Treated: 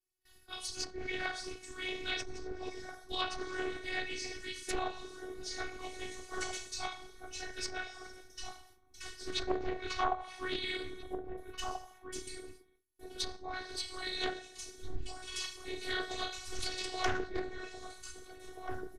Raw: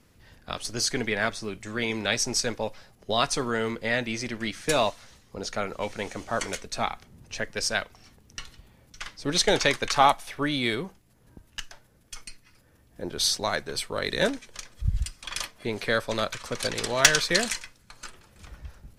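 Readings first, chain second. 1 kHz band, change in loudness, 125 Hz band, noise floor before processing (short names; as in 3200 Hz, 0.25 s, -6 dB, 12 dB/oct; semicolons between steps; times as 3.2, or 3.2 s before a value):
-10.5 dB, -13.0 dB, -16.0 dB, -60 dBFS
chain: two-slope reverb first 0.44 s, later 1.5 s, from -18 dB, DRR -7.5 dB; whisperiser; pre-emphasis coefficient 0.8; added harmonics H 7 -19 dB, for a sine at -1 dBFS; bell 97 Hz +8 dB 1.6 oct; gate with hold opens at -56 dBFS; in parallel at -6 dB: soft clip -19 dBFS, distortion -5 dB; on the sum: treble ducked by the level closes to 750 Hz, closed at -25 dBFS; robotiser 370 Hz; outdoor echo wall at 280 m, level -6 dB; Doppler distortion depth 0.34 ms; gain +3.5 dB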